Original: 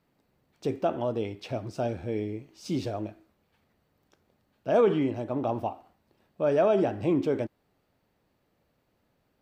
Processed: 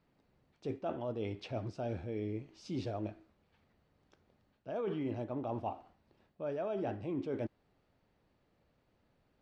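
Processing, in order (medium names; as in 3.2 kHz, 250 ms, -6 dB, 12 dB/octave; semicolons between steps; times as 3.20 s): low-pass 5.4 kHz 12 dB/octave; bass shelf 73 Hz +6 dB; reverse; compression 16:1, threshold -31 dBFS, peak gain reduction 14.5 dB; reverse; trim -2.5 dB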